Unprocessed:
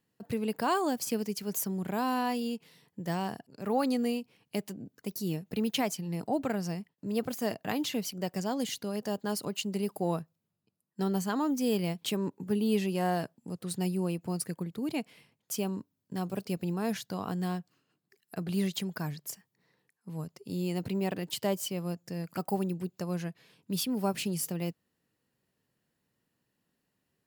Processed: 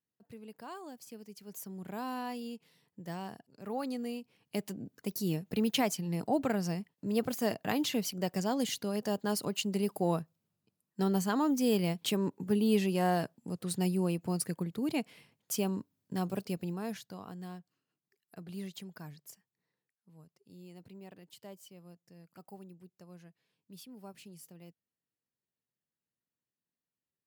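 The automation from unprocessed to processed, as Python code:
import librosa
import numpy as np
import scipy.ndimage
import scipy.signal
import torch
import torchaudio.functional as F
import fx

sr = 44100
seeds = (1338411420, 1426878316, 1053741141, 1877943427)

y = fx.gain(x, sr, db=fx.line((1.19, -17.0), (1.93, -8.0), (4.08, -8.0), (4.74, 0.5), (16.25, 0.5), (17.32, -11.5), (19.32, -11.5), (20.11, -19.0)))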